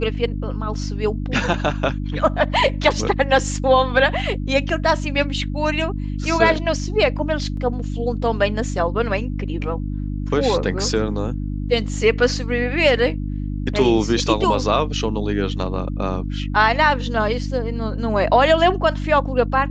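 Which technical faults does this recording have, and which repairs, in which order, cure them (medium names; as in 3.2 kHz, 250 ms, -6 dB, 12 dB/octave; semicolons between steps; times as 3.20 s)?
hum 50 Hz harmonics 6 -25 dBFS
7.57 s: dropout 2.6 ms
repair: de-hum 50 Hz, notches 6; interpolate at 7.57 s, 2.6 ms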